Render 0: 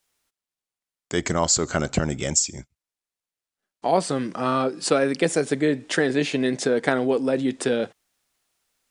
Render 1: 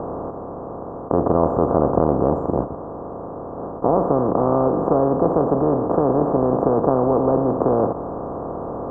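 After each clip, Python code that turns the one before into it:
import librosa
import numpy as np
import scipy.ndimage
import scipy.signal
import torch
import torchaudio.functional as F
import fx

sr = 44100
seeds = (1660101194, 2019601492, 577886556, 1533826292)

y = fx.bin_compress(x, sr, power=0.2)
y = scipy.signal.sosfilt(scipy.signal.ellip(4, 1.0, 50, 1100.0, 'lowpass', fs=sr, output='sos'), y)
y = y * librosa.db_to_amplitude(-3.0)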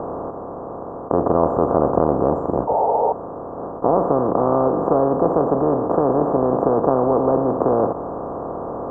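y = fx.low_shelf(x, sr, hz=270.0, db=-5.5)
y = fx.spec_paint(y, sr, seeds[0], shape='noise', start_s=2.67, length_s=0.46, low_hz=400.0, high_hz=950.0, level_db=-20.0)
y = y * librosa.db_to_amplitude(2.0)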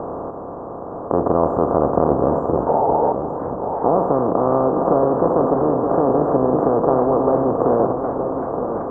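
y = x + 10.0 ** (-7.5 / 20.0) * np.pad(x, (int(922 * sr / 1000.0), 0))[:len(x)]
y = fx.echo_warbled(y, sr, ms=386, feedback_pct=76, rate_hz=2.8, cents=144, wet_db=-15.5)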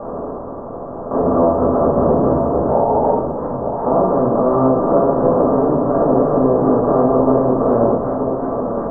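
y = fx.room_shoebox(x, sr, seeds[1], volume_m3=410.0, walls='furnished', distance_m=6.3)
y = y * librosa.db_to_amplitude(-8.0)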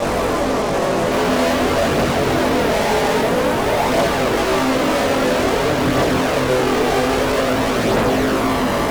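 y = fx.fuzz(x, sr, gain_db=39.0, gate_db=-39.0)
y = fx.chorus_voices(y, sr, voices=2, hz=0.25, base_ms=21, depth_ms=2.8, mix_pct=55)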